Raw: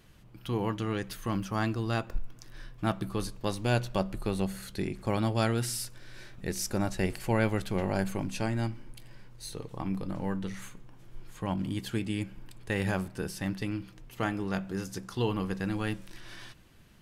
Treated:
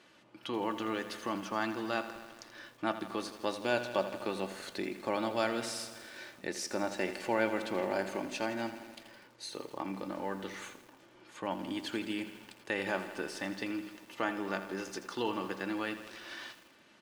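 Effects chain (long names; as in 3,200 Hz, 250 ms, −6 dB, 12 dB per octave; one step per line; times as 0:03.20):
high-pass filter 350 Hz 12 dB per octave
comb filter 3.4 ms, depth 34%
in parallel at +1 dB: downward compressor, threshold −40 dBFS, peak gain reduction 16 dB
on the sum: high-frequency loss of the air 69 metres
feedback echo at a low word length 82 ms, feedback 80%, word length 8 bits, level −12 dB
level −3 dB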